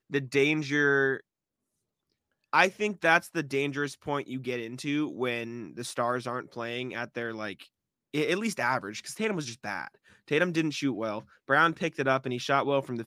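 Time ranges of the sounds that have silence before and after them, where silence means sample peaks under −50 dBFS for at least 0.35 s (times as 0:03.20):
0:02.53–0:07.66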